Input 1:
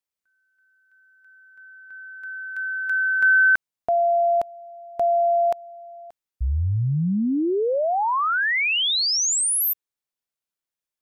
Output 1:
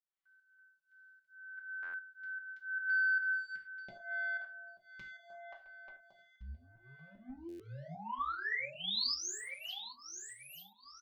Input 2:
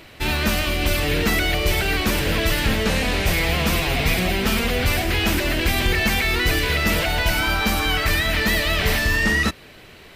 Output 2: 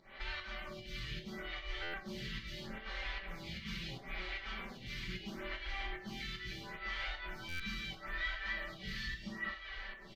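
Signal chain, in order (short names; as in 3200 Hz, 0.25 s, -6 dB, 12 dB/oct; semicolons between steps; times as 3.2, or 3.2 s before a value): notch 2600 Hz, Q 7.2; in parallel at -4 dB: overloaded stage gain 24 dB; on the sum: air absorption 240 m; compressor 2.5:1, threshold -38 dBFS; passive tone stack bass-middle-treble 5-5-5; comb 5.2 ms, depth 72%; on a send: feedback echo 0.887 s, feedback 41%, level -8.5 dB; on the sum: pump 151 bpm, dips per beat 1, -19 dB, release 0.172 s; non-linear reverb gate 0.13 s falling, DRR 1 dB; stuck buffer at 1.82/7.48, samples 512, times 9; photocell phaser 0.75 Hz; gain +4 dB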